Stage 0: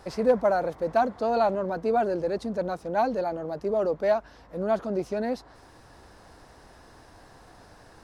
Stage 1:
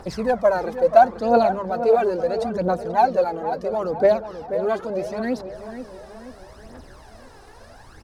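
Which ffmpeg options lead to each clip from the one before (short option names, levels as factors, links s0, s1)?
-filter_complex "[0:a]aphaser=in_gain=1:out_gain=1:delay=2.6:decay=0.66:speed=0.74:type=triangular,bandreject=f=50:t=h:w=6,bandreject=f=100:t=h:w=6,bandreject=f=150:t=h:w=6,bandreject=f=200:t=h:w=6,asplit=2[s0][s1];[s1]adelay=483,lowpass=f=2100:p=1,volume=0.316,asplit=2[s2][s3];[s3]adelay=483,lowpass=f=2100:p=1,volume=0.51,asplit=2[s4][s5];[s5]adelay=483,lowpass=f=2100:p=1,volume=0.51,asplit=2[s6][s7];[s7]adelay=483,lowpass=f=2100:p=1,volume=0.51,asplit=2[s8][s9];[s9]adelay=483,lowpass=f=2100:p=1,volume=0.51,asplit=2[s10][s11];[s11]adelay=483,lowpass=f=2100:p=1,volume=0.51[s12];[s0][s2][s4][s6][s8][s10][s12]amix=inputs=7:normalize=0,volume=1.33"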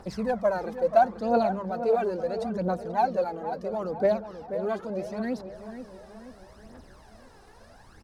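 -af "equalizer=f=200:t=o:w=0.29:g=7.5,volume=0.447"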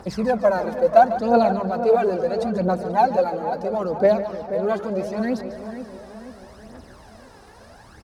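-af "highpass=42,aecho=1:1:147|294|441|588|735:0.224|0.114|0.0582|0.0297|0.0151,volume=2.11"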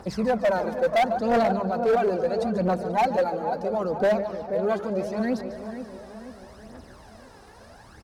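-af "asoftclip=type=hard:threshold=0.178,volume=0.794"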